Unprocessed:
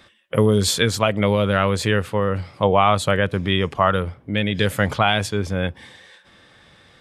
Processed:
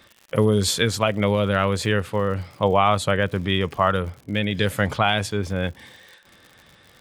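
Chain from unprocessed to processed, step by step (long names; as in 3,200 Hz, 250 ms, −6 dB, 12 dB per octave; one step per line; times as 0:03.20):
surface crackle 90 per second −33 dBFS
level −2 dB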